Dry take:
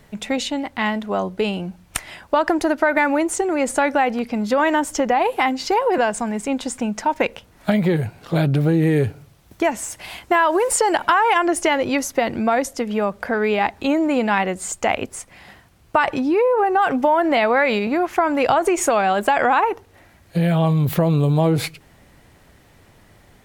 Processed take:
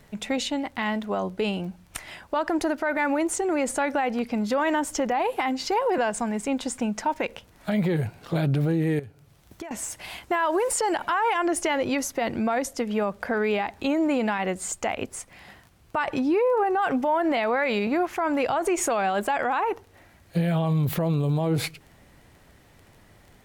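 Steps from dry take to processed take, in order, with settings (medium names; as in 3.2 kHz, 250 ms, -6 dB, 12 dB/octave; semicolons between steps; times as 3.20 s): 8.99–9.71 s: compression 8:1, threshold -33 dBFS, peak gain reduction 18.5 dB; peak limiter -12.5 dBFS, peak gain reduction 8.5 dB; crackle 12 per s -36 dBFS; trim -3.5 dB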